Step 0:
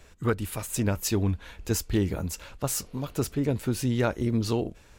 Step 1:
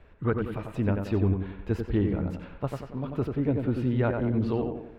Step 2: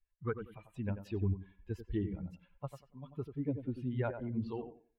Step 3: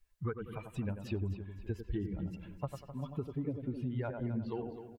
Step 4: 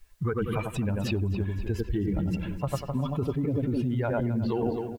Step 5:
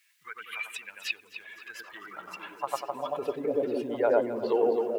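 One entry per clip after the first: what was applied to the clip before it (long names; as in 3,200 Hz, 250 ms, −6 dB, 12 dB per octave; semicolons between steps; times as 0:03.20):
high-frequency loss of the air 480 metres; tape delay 92 ms, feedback 52%, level −3 dB, low-pass 2,000 Hz
spectral dynamics exaggerated over time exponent 2; level −6 dB
downward compressor, threshold −44 dBFS, peak gain reduction 15 dB; on a send: repeating echo 258 ms, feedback 37%, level −12 dB; on the sum: level +10 dB
in parallel at +2 dB: compressor whose output falls as the input rises −41 dBFS, ratio −0.5; on the sum: floating-point word with a short mantissa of 6 bits; level +6 dB
echo through a band-pass that steps 436 ms, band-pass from 300 Hz, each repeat 0.7 octaves, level −5 dB; high-pass filter sweep 2,100 Hz → 480 Hz, 0:01.44–0:03.52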